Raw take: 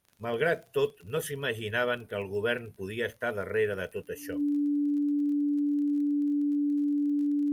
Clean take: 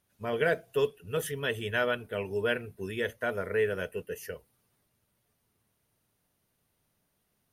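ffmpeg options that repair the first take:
-af "adeclick=t=4,bandreject=f=290:w=30"

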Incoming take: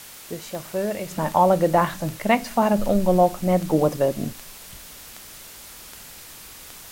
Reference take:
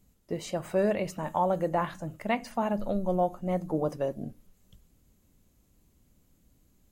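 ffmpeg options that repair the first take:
-af "adeclick=t=4,afwtdn=0.0089,asetnsamples=n=441:p=0,asendcmd='1.11 volume volume -9.5dB',volume=1"

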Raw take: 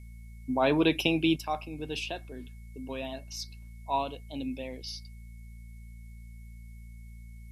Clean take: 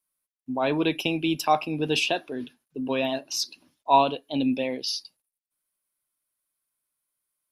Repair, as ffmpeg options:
-af "bandreject=f=56.9:t=h:w=4,bandreject=f=113.8:t=h:w=4,bandreject=f=170.7:t=h:w=4,bandreject=f=227.6:t=h:w=4,bandreject=f=2200:w=30,agate=range=0.0891:threshold=0.0126,asetnsamples=n=441:p=0,asendcmd='1.36 volume volume 11dB',volume=1"

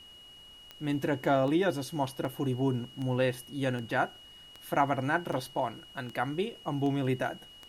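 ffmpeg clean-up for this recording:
-af "adeclick=t=4,bandreject=f=2900:w=30,agate=range=0.0891:threshold=0.00631"

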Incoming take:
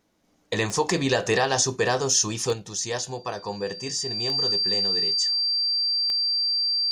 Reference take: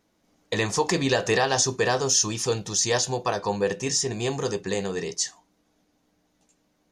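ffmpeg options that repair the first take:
-af "adeclick=t=4,bandreject=f=4700:w=30,asetnsamples=n=441:p=0,asendcmd='2.53 volume volume 5.5dB',volume=1"

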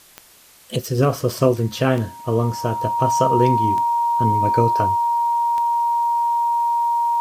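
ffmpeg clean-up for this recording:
-af "adeclick=t=4,bandreject=f=940:w=30,agate=range=0.0891:threshold=0.0282"

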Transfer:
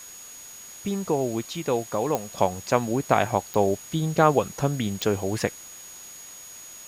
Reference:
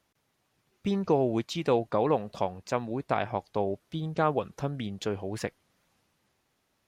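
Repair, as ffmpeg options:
-af "adeclick=t=4,bandreject=f=6700:w=30,afwtdn=0.005,asetnsamples=n=441:p=0,asendcmd='2.38 volume volume -7.5dB',volume=1"

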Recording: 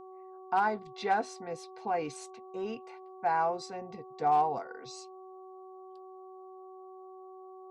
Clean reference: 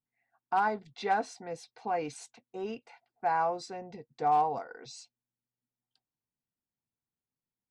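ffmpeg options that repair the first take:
-af "bandreject=f=375.4:t=h:w=4,bandreject=f=750.8:t=h:w=4,bandreject=f=1126.2:t=h:w=4"

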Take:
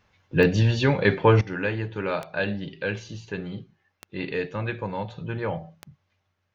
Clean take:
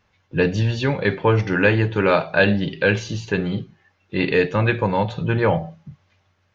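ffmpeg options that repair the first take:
-af "adeclick=t=4,asetnsamples=n=441:p=0,asendcmd='1.41 volume volume 10.5dB',volume=1"

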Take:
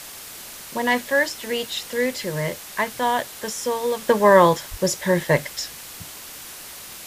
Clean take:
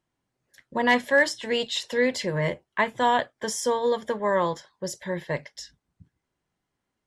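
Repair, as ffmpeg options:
-filter_complex "[0:a]asplit=3[s0][s1][s2];[s0]afade=t=out:st=4.7:d=0.02[s3];[s1]highpass=f=140:w=0.5412,highpass=f=140:w=1.3066,afade=t=in:st=4.7:d=0.02,afade=t=out:st=4.82:d=0.02[s4];[s2]afade=t=in:st=4.82:d=0.02[s5];[s3][s4][s5]amix=inputs=3:normalize=0,afwtdn=0.014,asetnsamples=n=441:p=0,asendcmd='4.09 volume volume -10.5dB',volume=1"

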